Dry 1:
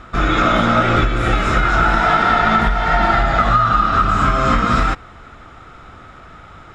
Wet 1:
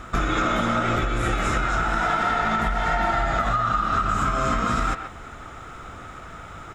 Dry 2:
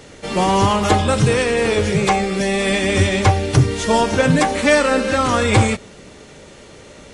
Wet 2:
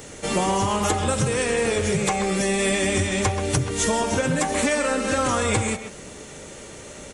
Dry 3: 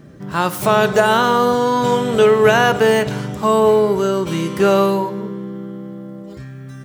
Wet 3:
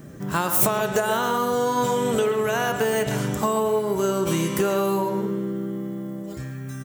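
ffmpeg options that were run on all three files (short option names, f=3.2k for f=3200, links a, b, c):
-filter_complex "[0:a]acompressor=threshold=-19dB:ratio=20,aexciter=amount=3:drive=4.6:freq=6.3k,asplit=2[a][b];[b]adelay=130,highpass=300,lowpass=3.4k,asoftclip=type=hard:threshold=-14.5dB,volume=-7dB[c];[a][c]amix=inputs=2:normalize=0"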